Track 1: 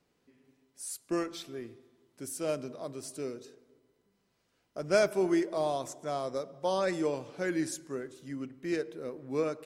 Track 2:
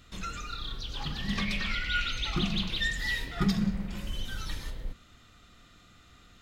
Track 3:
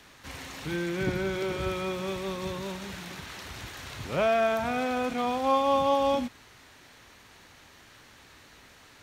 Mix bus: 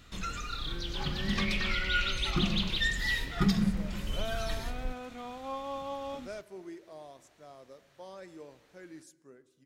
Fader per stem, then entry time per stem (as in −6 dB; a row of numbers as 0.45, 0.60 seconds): −17.5, +0.5, −14.0 decibels; 1.35, 0.00, 0.00 seconds